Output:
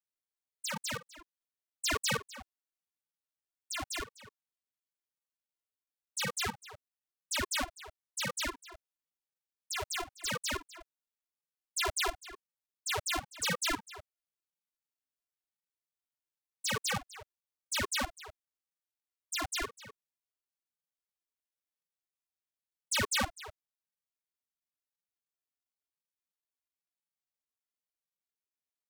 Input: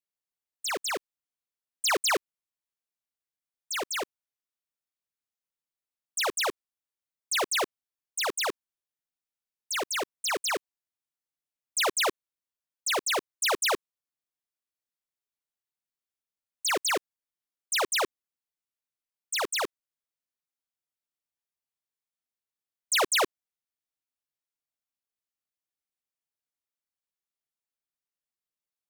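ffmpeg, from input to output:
-filter_complex "[0:a]asplit=2[a][b];[b]adelay=250.7,volume=-15dB,highshelf=f=4k:g=-5.64[c];[a][c]amix=inputs=2:normalize=0,afftfilt=real='hypot(re,im)*cos(PI*b)':imag='0':win_size=512:overlap=0.75,aeval=exprs='val(0)*sin(2*PI*550*n/s+550*0.55/0.96*sin(2*PI*0.96*n/s))':c=same"

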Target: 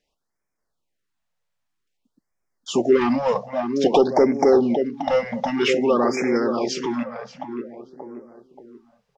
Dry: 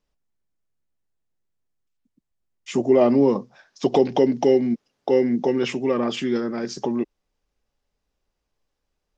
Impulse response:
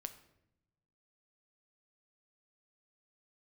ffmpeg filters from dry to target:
-filter_complex "[0:a]asplit=2[a][b];[b]adelay=580,lowpass=f=1.4k:p=1,volume=-7.5dB,asplit=2[c][d];[d]adelay=580,lowpass=f=1.4k:p=1,volume=0.43,asplit=2[e][f];[f]adelay=580,lowpass=f=1.4k:p=1,volume=0.43,asplit=2[g][h];[h]adelay=580,lowpass=f=1.4k:p=1,volume=0.43,asplit=2[i][j];[j]adelay=580,lowpass=f=1.4k:p=1,volume=0.43[k];[a][c][e][g][i][k]amix=inputs=6:normalize=0,asplit=2[l][m];[m]highpass=f=720:p=1,volume=14dB,asoftclip=type=tanh:threshold=-5.5dB[n];[l][n]amix=inputs=2:normalize=0,lowpass=f=4.6k:p=1,volume=-6dB,afftfilt=real='re*(1-between(b*sr/1024,300*pow(3600/300,0.5+0.5*sin(2*PI*0.52*pts/sr))/1.41,300*pow(3600/300,0.5+0.5*sin(2*PI*0.52*pts/sr))*1.41))':imag='im*(1-between(b*sr/1024,300*pow(3600/300,0.5+0.5*sin(2*PI*0.52*pts/sr))/1.41,300*pow(3600/300,0.5+0.5*sin(2*PI*0.52*pts/sr))*1.41))':win_size=1024:overlap=0.75"

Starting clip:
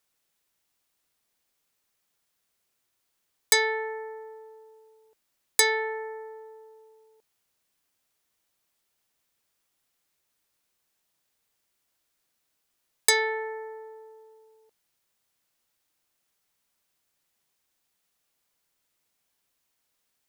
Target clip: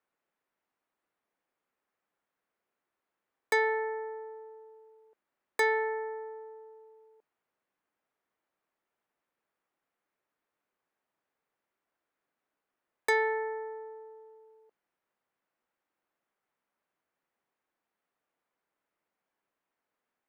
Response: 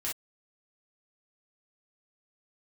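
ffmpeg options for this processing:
-filter_complex "[0:a]acrossover=split=190 2100:gain=0.224 1 0.0794[a][b][c];[a][b][c]amix=inputs=3:normalize=0"

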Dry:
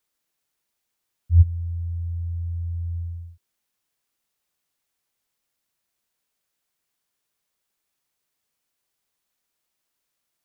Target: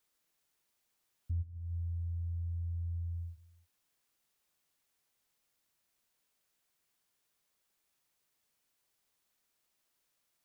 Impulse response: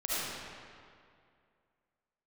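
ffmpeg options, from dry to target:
-filter_complex "[0:a]acompressor=threshold=-34dB:ratio=8,asplit=2[a][b];[1:a]atrim=start_sample=2205,afade=t=out:st=0.32:d=0.01,atrim=end_sample=14553,adelay=33[c];[b][c]afir=irnorm=-1:irlink=0,volume=-19.5dB[d];[a][d]amix=inputs=2:normalize=0,volume=-1dB"

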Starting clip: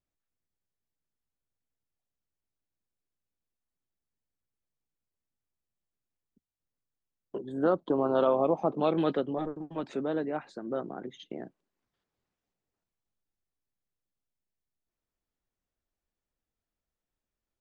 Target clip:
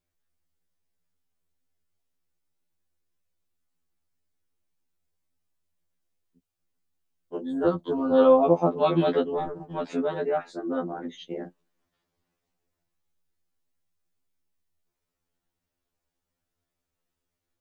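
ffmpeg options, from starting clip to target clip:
-filter_complex "[0:a]asettb=1/sr,asplit=3[a][b][c];[a]atrim=end=7.664[d];[b]atrim=start=7.66:end=8.12,asetpts=PTS-STARTPTS,afade=t=in:d=0.004:c=qsin,afade=t=out:st=0.456:d=0.004:c=qsin,acrossover=split=240|3000[e][f][g];[f]acompressor=threshold=-36dB:ratio=2[h];[e][h][g]amix=inputs=3:normalize=0[i];[c]atrim=start=8.116[j];[d][i]acrossfade=d=0.004:c1=hsin:c2=qsin[k];[k][j]acrossfade=d=0.004:c1=qsin:c2=hsin,afftfilt=real='re*2*eq(mod(b,4),0)':imag='im*2*eq(mod(b,4),0)':win_size=2048:overlap=0.75,volume=8dB"

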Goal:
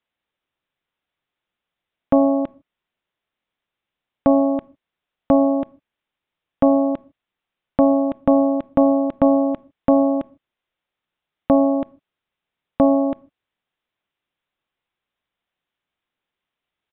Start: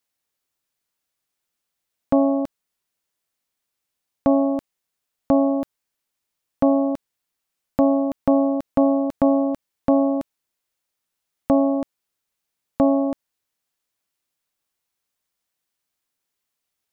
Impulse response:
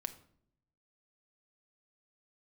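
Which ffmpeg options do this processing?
-filter_complex "[0:a]aresample=8000,aresample=44100,asplit=2[a][b];[1:a]atrim=start_sample=2205,afade=t=out:st=0.21:d=0.01,atrim=end_sample=9702[c];[b][c]afir=irnorm=-1:irlink=0,volume=-6.5dB[d];[a][d]amix=inputs=2:normalize=0"

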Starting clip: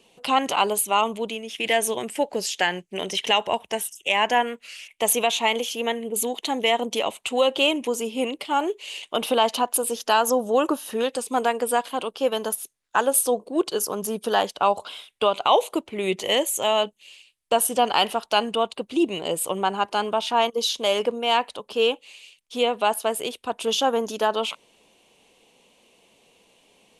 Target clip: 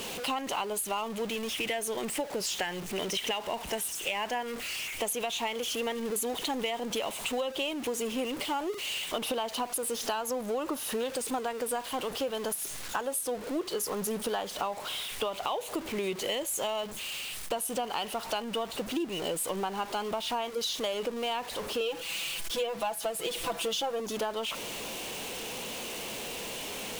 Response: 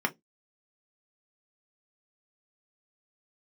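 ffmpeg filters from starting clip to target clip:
-filter_complex "[0:a]aeval=exprs='val(0)+0.5*0.0447*sgn(val(0))':c=same,asettb=1/sr,asplit=3[a][b][c];[a]atrim=end=21.804[d];[b]atrim=start=21.8:end=24,asetpts=PTS-STARTPTS,afade=t=in:d=0.004:c=qsin,afade=t=out:st=2.196:d=0.004:c=qsin,aecho=1:1:6:0.9,atrim=end_sample=97020[e];[c]atrim=start=23.996[f];[d][e]acrossfade=d=0.004:c1=hsin:c2=qsin[g];[g][f]acrossfade=d=0.004:c1=qsin:c2=hsin,acompressor=threshold=-23dB:ratio=10,volume=-5.5dB"

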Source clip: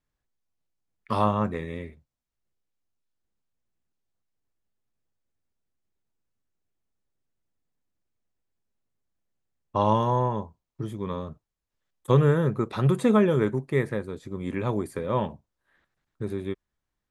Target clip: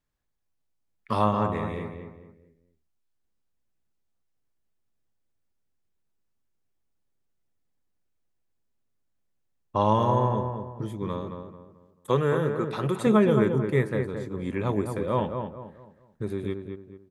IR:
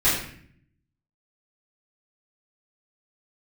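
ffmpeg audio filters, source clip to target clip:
-filter_complex "[0:a]asettb=1/sr,asplit=3[a][b][c];[a]atrim=end=11.214[d];[b]atrim=start=11.21:end=13.07,asetpts=PTS-STARTPTS,afade=t=in:d=0.004:c=qsin,afade=t=out:st=1.856:d=0.004:c=qsin,highpass=f=330:p=1[e];[c]atrim=start=13.066[f];[d][e]acrossfade=d=0.004:c1=hsin:c2=qsin[g];[g][f]acrossfade=d=0.004:c1=qsin:c2=hsin,asplit=2[h][i];[i]adelay=219,lowpass=f=1.9k:p=1,volume=-6dB,asplit=2[j][k];[k]adelay=219,lowpass=f=1.9k:p=1,volume=0.36,asplit=2[l][m];[m]adelay=219,lowpass=f=1.9k:p=1,volume=0.36,asplit=2[n][o];[o]adelay=219,lowpass=f=1.9k:p=1,volume=0.36[p];[j][l][n][p]amix=inputs=4:normalize=0[q];[h][q]amix=inputs=2:normalize=0"

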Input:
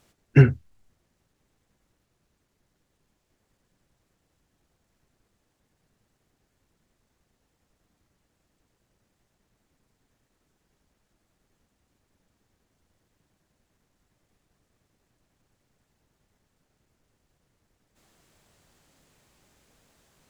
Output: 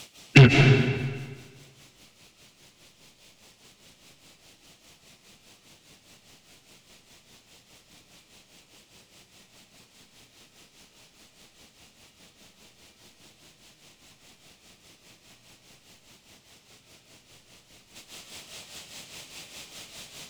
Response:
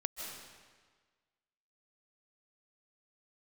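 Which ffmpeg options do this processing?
-filter_complex "[0:a]bass=f=250:g=9,treble=f=4k:g=-4,alimiter=limit=-6dB:level=0:latency=1:release=26,tremolo=f=4.9:d=0.85,asplit=2[a][b];[b]highpass=f=720:p=1,volume=28dB,asoftclip=type=tanh:threshold=-0.5dB[c];[a][c]amix=inputs=2:normalize=0,lowpass=f=1.5k:p=1,volume=-6dB,aexciter=amount=9.2:drive=2.5:freq=2.4k[d];[1:a]atrim=start_sample=2205[e];[d][e]afir=irnorm=-1:irlink=0,volume=-1dB"

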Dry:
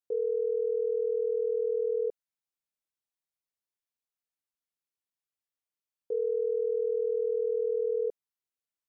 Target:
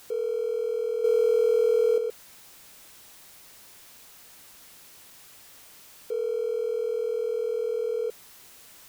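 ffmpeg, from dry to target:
-filter_complex "[0:a]aeval=exprs='val(0)+0.5*0.00891*sgn(val(0))':c=same,asettb=1/sr,asplit=3[a][b][c];[a]atrim=end=1.044[d];[b]atrim=start=1.04:end=1.98,asetpts=PTS-STARTPTS,afade=t=in:d=0.004:c=qsin,afade=t=out:st=0.936:d=0.004:c=qsin,acontrast=71[e];[c]atrim=start=1.976[f];[d][e]acrossfade=d=0.004:c1=hsin:c2=qsin[g];[g][f]acrossfade=d=0.004:c1=qsin:c2=hsin"

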